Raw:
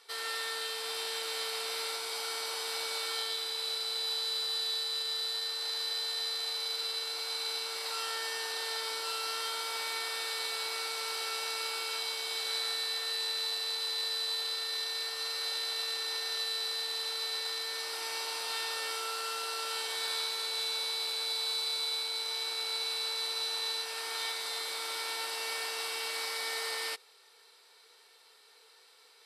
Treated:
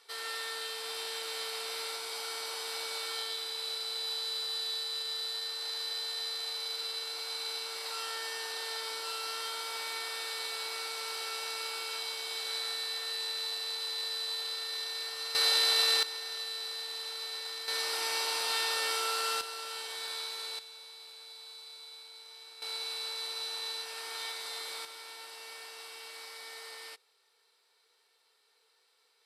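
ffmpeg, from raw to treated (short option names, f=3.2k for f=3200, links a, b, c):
-af "asetnsamples=n=441:p=0,asendcmd='15.35 volume volume 8.5dB;16.03 volume volume -4dB;17.68 volume volume 4dB;19.41 volume volume -4.5dB;20.59 volume volume -15.5dB;22.62 volume volume -3.5dB;24.85 volume volume -10.5dB',volume=-2dB"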